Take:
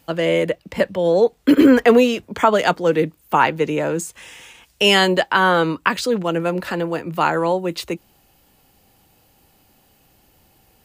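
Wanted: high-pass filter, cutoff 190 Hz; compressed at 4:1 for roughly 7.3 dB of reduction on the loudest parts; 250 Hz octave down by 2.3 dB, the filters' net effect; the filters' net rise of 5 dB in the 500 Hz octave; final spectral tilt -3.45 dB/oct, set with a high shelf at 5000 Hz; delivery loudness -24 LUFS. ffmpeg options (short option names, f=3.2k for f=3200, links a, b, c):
-af "highpass=190,equalizer=f=250:t=o:g=-4,equalizer=f=500:t=o:g=6.5,highshelf=f=5k:g=7,acompressor=threshold=-13dB:ratio=4,volume=-5dB"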